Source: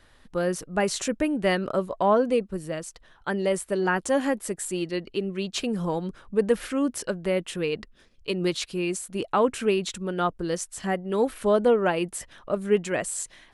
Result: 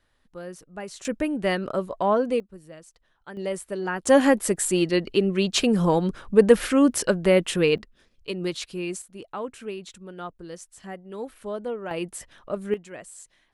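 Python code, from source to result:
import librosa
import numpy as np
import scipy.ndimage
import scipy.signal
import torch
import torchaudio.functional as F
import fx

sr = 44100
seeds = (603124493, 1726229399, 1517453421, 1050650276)

y = fx.gain(x, sr, db=fx.steps((0.0, -12.0), (1.05, -1.0), (2.4, -12.5), (3.37, -4.5), (4.07, 7.0), (7.78, -3.0), (9.02, -11.0), (11.91, -3.0), (12.74, -13.0)))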